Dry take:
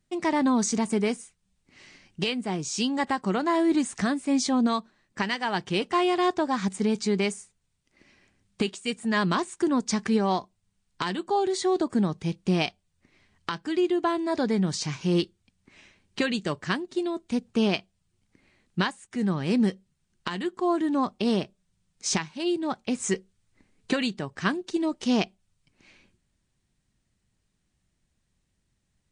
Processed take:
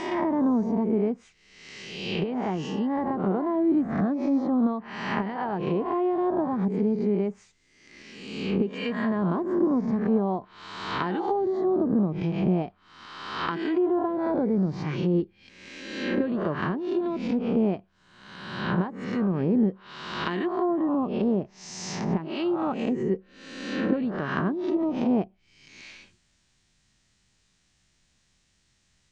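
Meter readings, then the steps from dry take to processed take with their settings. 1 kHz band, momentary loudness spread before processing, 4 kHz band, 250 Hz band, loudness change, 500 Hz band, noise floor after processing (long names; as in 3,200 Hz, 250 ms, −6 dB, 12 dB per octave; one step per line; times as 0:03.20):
−1.5 dB, 7 LU, −7.0 dB, +1.5 dB, 0.0 dB, +1.5 dB, −68 dBFS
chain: peak hold with a rise ahead of every peak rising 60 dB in 0.96 s
high-shelf EQ 5,400 Hz +4.5 dB
treble cut that deepens with the level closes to 630 Hz, closed at −20 dBFS
low-pass filter 7,000 Hz 24 dB per octave
one half of a high-frequency compander encoder only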